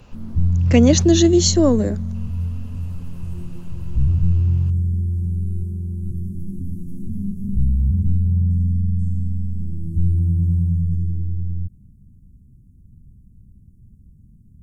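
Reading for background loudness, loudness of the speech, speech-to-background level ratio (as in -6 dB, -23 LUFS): -22.5 LUFS, -16.0 LUFS, 6.5 dB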